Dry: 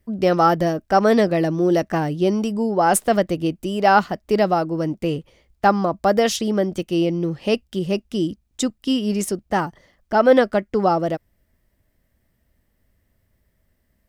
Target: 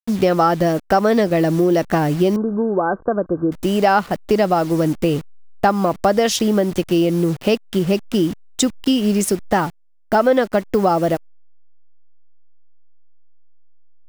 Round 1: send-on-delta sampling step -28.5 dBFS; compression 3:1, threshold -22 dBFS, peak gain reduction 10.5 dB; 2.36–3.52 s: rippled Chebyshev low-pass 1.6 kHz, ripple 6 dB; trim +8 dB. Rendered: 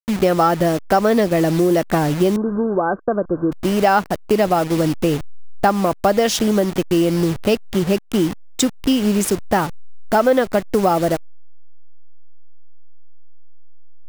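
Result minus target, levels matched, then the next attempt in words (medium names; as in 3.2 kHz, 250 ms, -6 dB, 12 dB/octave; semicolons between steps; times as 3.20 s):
send-on-delta sampling: distortion +9 dB
send-on-delta sampling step -36 dBFS; compression 3:1, threshold -22 dBFS, peak gain reduction 10.5 dB; 2.36–3.52 s: rippled Chebyshev low-pass 1.6 kHz, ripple 6 dB; trim +8 dB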